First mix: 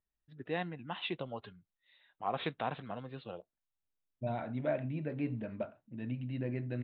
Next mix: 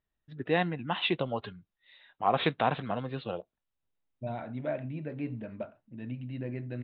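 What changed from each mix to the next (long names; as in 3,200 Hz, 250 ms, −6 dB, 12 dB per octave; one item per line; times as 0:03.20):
first voice +9.0 dB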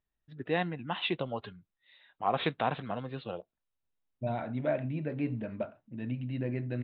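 first voice −3.0 dB
second voice +3.0 dB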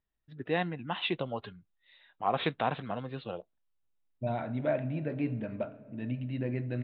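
reverb: on, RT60 2.8 s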